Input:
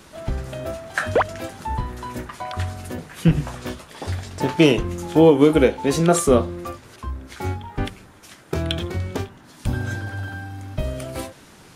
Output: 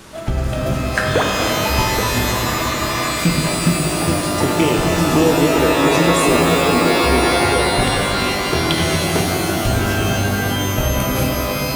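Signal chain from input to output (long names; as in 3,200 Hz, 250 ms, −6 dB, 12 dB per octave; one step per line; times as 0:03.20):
echo through a band-pass that steps 413 ms, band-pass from 190 Hz, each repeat 0.7 octaves, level −3 dB
downward compressor, threshold −21 dBFS, peak gain reduction 13 dB
frozen spectrum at 0:02.30, 0.83 s
reverb with rising layers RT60 3.7 s, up +12 semitones, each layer −2 dB, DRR 0 dB
level +6 dB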